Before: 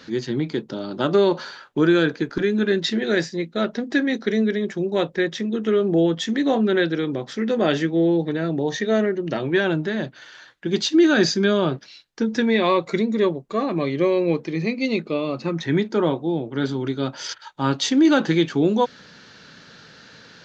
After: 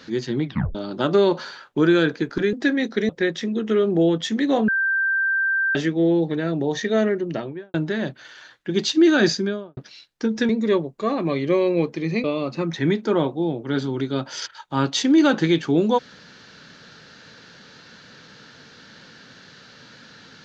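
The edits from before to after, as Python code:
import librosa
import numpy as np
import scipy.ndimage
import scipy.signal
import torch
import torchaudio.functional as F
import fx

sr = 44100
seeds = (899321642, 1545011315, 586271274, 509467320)

y = fx.studio_fade_out(x, sr, start_s=9.18, length_s=0.53)
y = fx.studio_fade_out(y, sr, start_s=11.21, length_s=0.53)
y = fx.edit(y, sr, fx.tape_stop(start_s=0.45, length_s=0.3),
    fx.cut(start_s=2.53, length_s=1.3),
    fx.cut(start_s=4.39, length_s=0.67),
    fx.bleep(start_s=6.65, length_s=1.07, hz=1570.0, db=-18.0),
    fx.cut(start_s=12.46, length_s=0.54),
    fx.cut(start_s=14.75, length_s=0.36), tone=tone)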